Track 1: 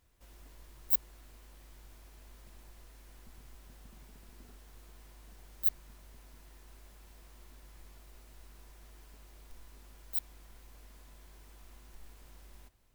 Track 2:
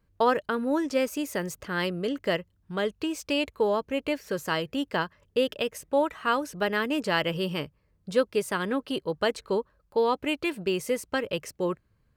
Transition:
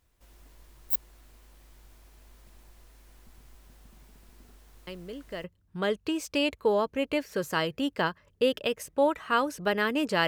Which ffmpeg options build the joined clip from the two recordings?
ffmpeg -i cue0.wav -i cue1.wav -filter_complex "[1:a]asplit=2[link_01][link_02];[0:a]apad=whole_dur=10.27,atrim=end=10.27,atrim=end=5.442[link_03];[link_02]atrim=start=2.388:end=7.22[link_04];[link_01]atrim=start=1.82:end=2.39,asetpts=PTS-STARTPTS,volume=-11.5dB,afade=type=in:duration=0.004:curve=hsin,afade=type=out:start_time=0.566:duration=0.004:curve=hsin,adelay=4870[link_05];[link_03][link_04]acrossfade=duration=0.004:curve1=hsin:curve2=hsin[link_06];[link_06][link_05]amix=inputs=2:normalize=0" out.wav

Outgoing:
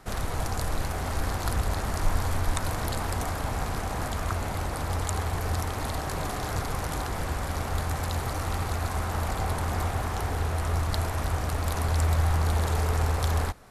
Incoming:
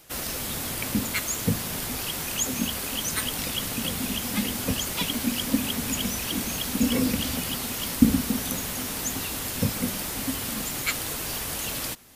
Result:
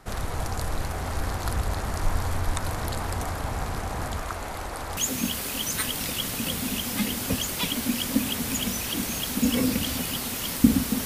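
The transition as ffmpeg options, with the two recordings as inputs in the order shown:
ffmpeg -i cue0.wav -i cue1.wav -filter_complex "[0:a]asettb=1/sr,asplit=3[link_01][link_02][link_03];[link_01]atrim=end=4.214[link_04];[link_02]atrim=start=4.21:end=4.97,asetpts=PTS-STARTPTS,afade=type=in:duration=0.004:curve=qsin,afade=type=out:start_time=0.756:duration=0.004:curve=qsin,equalizer=frequency=110:width=0.68:gain=-10.5[link_05];[link_03]atrim=start=4.966[link_06];[link_04][link_05]acrossfade=duration=0.004:curve1=hsin:curve2=qsin[link_07];[link_07][link_06]acrossfade=duration=0.004:curve1=qsin:curve2=hsin,apad=whole_dur=11.05,atrim=end=11.05,atrim=end=4.972[link_08];[1:a]atrim=start=2.348:end=8.43[link_09];[link_08][link_09]acrossfade=duration=0.004:curve1=hsin:curve2=hsin" out.wav

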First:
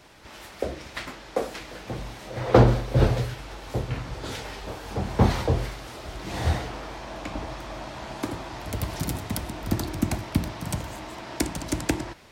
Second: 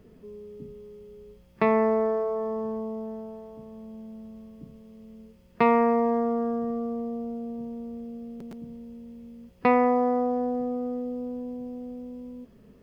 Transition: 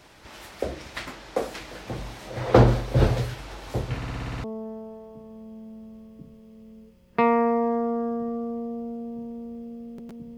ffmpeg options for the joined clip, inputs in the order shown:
ffmpeg -i cue0.wav -i cue1.wav -filter_complex "[0:a]apad=whole_dur=10.37,atrim=end=10.37,asplit=8[link_01][link_02][link_03][link_04][link_05][link_06][link_07][link_08];[link_01]atrim=end=4.022[link_09];[link_02]atrim=start=3.958:end=4.022[link_10];[link_03]atrim=start=3.958:end=4.022[link_11];[link_04]atrim=start=3.958:end=4.022[link_12];[link_05]atrim=start=3.958:end=4.022[link_13];[link_06]atrim=start=3.958:end=4.022[link_14];[link_07]atrim=start=3.958:end=4.022[link_15];[link_08]atrim=start=3.958:end=4.022[link_16];[1:a]atrim=start=2.858:end=8.79[link_17];[link_09][link_10]acrossfade=duration=0.004:curve1=hsin:curve2=hsin[link_18];[link_18][link_11]acrossfade=duration=0.004:curve1=hsin:curve2=hsin[link_19];[link_19][link_12]acrossfade=duration=0.004:curve1=hsin:curve2=hsin[link_20];[link_20][link_13]acrossfade=duration=0.004:curve1=hsin:curve2=hsin[link_21];[link_21][link_14]acrossfade=duration=0.004:curve1=hsin:curve2=hsin[link_22];[link_22][link_15]acrossfade=duration=0.004:curve1=hsin:curve2=hsin[link_23];[link_23][link_16]acrossfade=duration=0.004:curve1=hsin:curve2=hsin[link_24];[link_24][link_17]acrossfade=duration=0.004:curve1=hsin:curve2=hsin" out.wav

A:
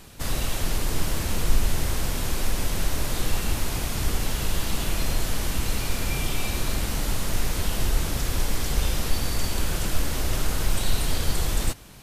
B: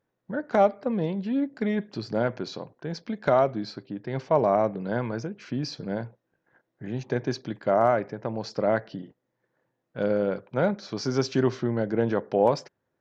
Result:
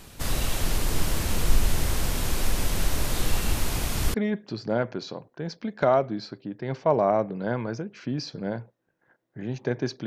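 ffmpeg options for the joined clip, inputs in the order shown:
ffmpeg -i cue0.wav -i cue1.wav -filter_complex "[0:a]apad=whole_dur=10.06,atrim=end=10.06,atrim=end=4.142[link_01];[1:a]atrim=start=1.588:end=7.51[link_02];[link_01][link_02]acrossfade=duration=0.004:curve1=hsin:curve2=hsin" out.wav

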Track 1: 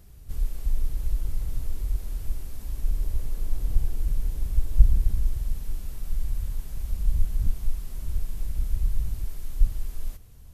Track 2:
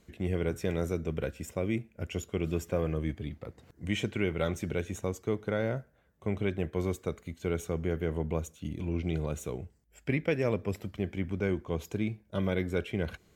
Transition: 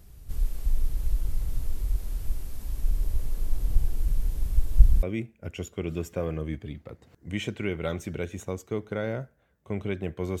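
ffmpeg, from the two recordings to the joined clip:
ffmpeg -i cue0.wav -i cue1.wav -filter_complex "[0:a]apad=whole_dur=10.4,atrim=end=10.4,atrim=end=5.032[link_01];[1:a]atrim=start=1.588:end=6.96[link_02];[link_01][link_02]acrossfade=duration=0.004:curve1=hsin:curve2=hsin" out.wav

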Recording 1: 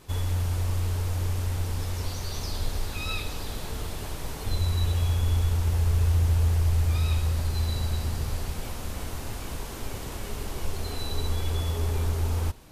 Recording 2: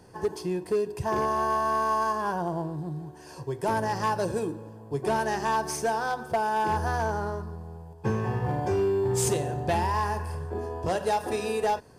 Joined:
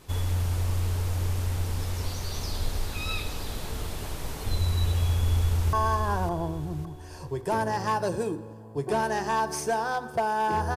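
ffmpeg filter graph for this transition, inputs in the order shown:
ffmpeg -i cue0.wav -i cue1.wav -filter_complex "[0:a]apad=whole_dur=10.76,atrim=end=10.76,atrim=end=5.732[link_01];[1:a]atrim=start=1.888:end=6.92[link_02];[link_01][link_02]acrossfade=duration=0.004:curve1=hsin:curve2=hsin,asplit=2[link_03][link_04];[link_04]afade=type=in:start_time=5.18:duration=0.01,afade=type=out:start_time=5.73:duration=0.01,aecho=0:1:560|1120|1680|2240|2800:0.501187|0.200475|0.08019|0.032076|0.0128304[link_05];[link_03][link_05]amix=inputs=2:normalize=0" out.wav

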